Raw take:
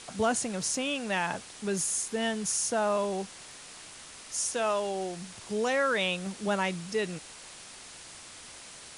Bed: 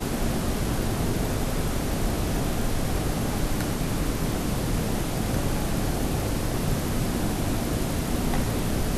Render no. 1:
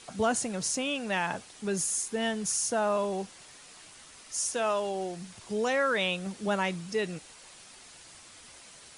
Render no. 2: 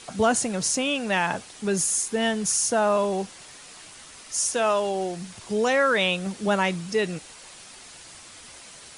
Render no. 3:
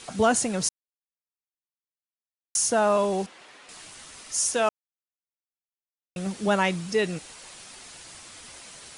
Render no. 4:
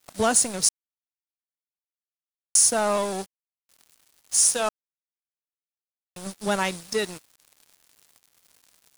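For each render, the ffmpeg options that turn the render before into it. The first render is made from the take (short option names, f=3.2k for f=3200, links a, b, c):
-af "afftdn=nr=6:nf=-48"
-af "volume=6dB"
-filter_complex "[0:a]asettb=1/sr,asplit=3[a][b][c];[a]atrim=end=3.264[d];[b]atrim=start=3.26:end=3.69,asetpts=PTS-STARTPTS,afade=t=in:d=0.004:c=qsin,afade=t=out:st=0.426:d=0.004:c=qsin,acrossover=split=220 3600:gain=0.126 1 0.178[e][f][g];[e][f][g]amix=inputs=3:normalize=0[h];[c]atrim=start=3.686[i];[d][h]acrossfade=d=0.004:c1=hsin:c2=qsin[j];[j][i]acrossfade=d=0.004:c1=qsin:c2=hsin,asplit=5[k][l][m][n][o];[k]atrim=end=0.69,asetpts=PTS-STARTPTS,afade=t=out:st=0.686:d=0.004:c=hsin[p];[l]atrim=start=0.69:end=2.55,asetpts=PTS-STARTPTS,volume=0[q];[m]atrim=start=2.55:end=4.69,asetpts=PTS-STARTPTS,afade=t=in:d=0.004:c=hsin,afade=t=out:st=2.136:d=0.004:c=hsin[r];[n]atrim=start=4.69:end=6.16,asetpts=PTS-STARTPTS,volume=0[s];[o]atrim=start=6.16,asetpts=PTS-STARTPTS,afade=t=in:d=0.004:c=hsin[t];[p][q][r][s][t]concat=n=5:v=0:a=1"
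-af "aexciter=amount=3.1:drive=1.8:freq=3.8k,aeval=exprs='sgn(val(0))*max(abs(val(0))-0.0251,0)':c=same"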